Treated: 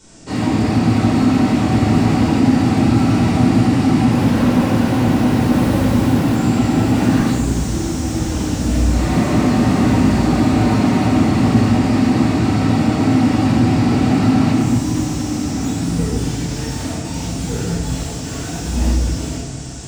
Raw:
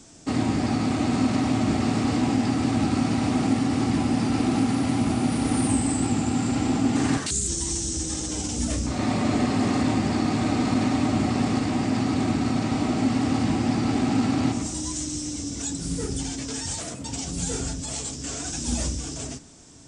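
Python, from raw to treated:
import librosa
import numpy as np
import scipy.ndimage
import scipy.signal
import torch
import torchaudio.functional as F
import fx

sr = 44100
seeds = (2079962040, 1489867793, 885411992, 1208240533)

y = fx.self_delay(x, sr, depth_ms=0.49, at=(4.1, 6.36))
y = fx.echo_diffused(y, sr, ms=1373, feedback_pct=47, wet_db=-10)
y = fx.room_shoebox(y, sr, seeds[0], volume_m3=750.0, walls='mixed', distance_m=4.7)
y = fx.slew_limit(y, sr, full_power_hz=210.0)
y = y * librosa.db_to_amplitude(-2.5)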